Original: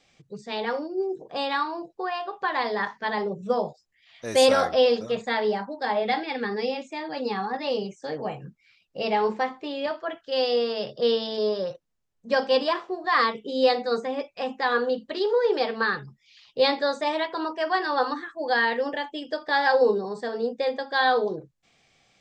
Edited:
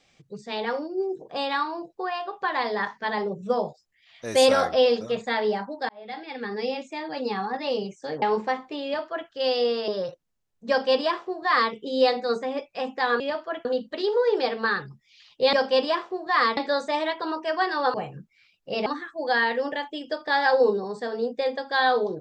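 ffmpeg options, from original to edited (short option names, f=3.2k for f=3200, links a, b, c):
-filter_complex "[0:a]asplit=10[a][b][c][d][e][f][g][h][i][j];[a]atrim=end=5.89,asetpts=PTS-STARTPTS,afade=t=out:st=5.886:d=0.004:c=hsin[k];[b]atrim=start=5.89:end=8.222,asetpts=PTS-STARTPTS,afade=t=in:d=0.85[l];[c]atrim=start=9.138:end=10.802[m];[d]atrim=start=11.498:end=14.822[n];[e]atrim=start=9.758:end=10.212[o];[f]atrim=start=14.818:end=16.702[p];[g]atrim=start=12.308:end=13.352[q];[h]atrim=start=16.698:end=18.072[r];[i]atrim=start=8.218:end=9.142[s];[j]atrim=start=18.068[t];[k][l]concat=n=2:v=0:a=1[u];[u][m]acrossfade=d=0.004:c1=hsin:c2=hsin[v];[v][n]acrossfade=d=0.004:c1=hsin:c2=hsin[w];[w][o]acrossfade=d=0.004:c1=hsin:c2=hsin[x];[x][p]acrossfade=d=0.004:c1=hsin:c2=hsin[y];[y][q]acrossfade=d=0.004:c1=hsin:c2=hsin[z];[z][r]acrossfade=d=0.004:c1=hsin:c2=hsin[aa];[aa][s]acrossfade=d=0.004:c1=hsin:c2=hsin[ab];[ab][t]acrossfade=d=0.004:c1=hsin:c2=hsin"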